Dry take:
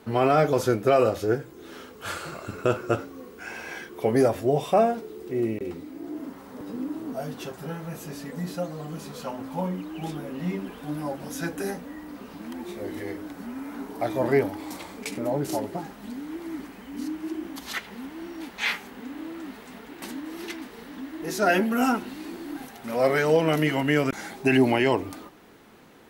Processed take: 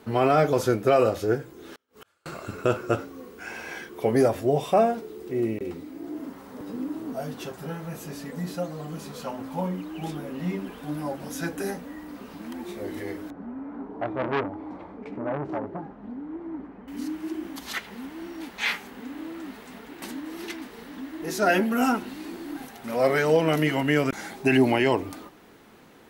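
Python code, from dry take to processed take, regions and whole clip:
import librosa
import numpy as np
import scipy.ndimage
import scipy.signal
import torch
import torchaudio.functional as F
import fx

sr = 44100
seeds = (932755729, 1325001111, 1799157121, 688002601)

y = fx.chain(x, sr, fx.low_shelf(hz=460.0, db=-4.0),
    fx.gate_flip(shuts_db=-34.0, range_db=-37), at=(1.73, 2.26))
y = fx.chain(y, sr, fx.lowpass(hz=1100.0, slope=12),
    fx.transformer_sat(knee_hz=1400.0), at=(13.3, 16.88))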